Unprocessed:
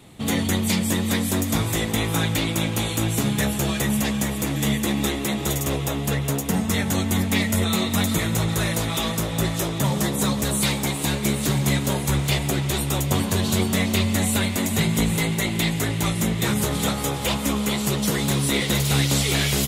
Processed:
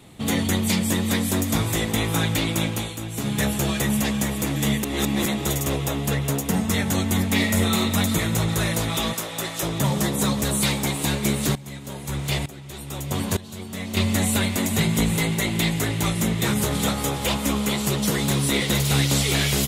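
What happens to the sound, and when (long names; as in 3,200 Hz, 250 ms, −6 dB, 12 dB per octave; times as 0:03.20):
0:02.64–0:03.43: duck −9 dB, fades 0.32 s
0:04.83–0:05.26: reverse
0:07.33–0:07.79: thrown reverb, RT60 0.82 s, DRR 4.5 dB
0:09.13–0:09.63: high-pass filter 640 Hz 6 dB per octave
0:11.55–0:13.97: tremolo with a ramp in dB swelling 1.1 Hz, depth 19 dB
0:15.15–0:18.00: single-tap delay 245 ms −19 dB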